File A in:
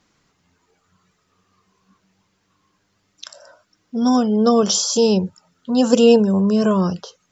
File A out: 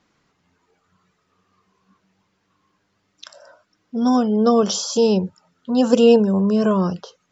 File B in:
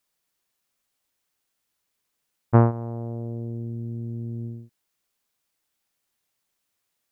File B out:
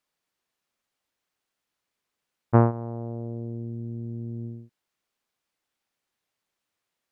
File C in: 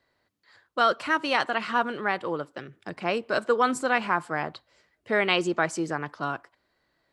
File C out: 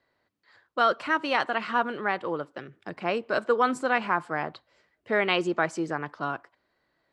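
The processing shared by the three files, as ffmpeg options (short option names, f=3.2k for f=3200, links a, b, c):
-af "lowpass=f=3.4k:p=1,lowshelf=f=110:g=-5.5"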